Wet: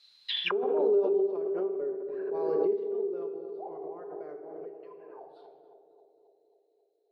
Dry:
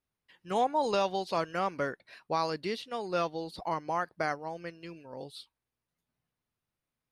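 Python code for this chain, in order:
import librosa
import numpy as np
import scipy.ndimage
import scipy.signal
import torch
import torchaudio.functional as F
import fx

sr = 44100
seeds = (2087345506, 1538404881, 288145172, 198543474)

y = fx.high_shelf(x, sr, hz=4700.0, db=-3.5)
y = fx.auto_wah(y, sr, base_hz=400.0, top_hz=4100.0, q=21.0, full_db=-35.5, direction='down')
y = fx.echo_banded(y, sr, ms=269, feedback_pct=69, hz=450.0, wet_db=-7)
y = fx.room_shoebox(y, sr, seeds[0], volume_m3=1300.0, walls='mixed', distance_m=1.3)
y = fx.pre_swell(y, sr, db_per_s=21.0)
y = y * 10.0 ** (8.5 / 20.0)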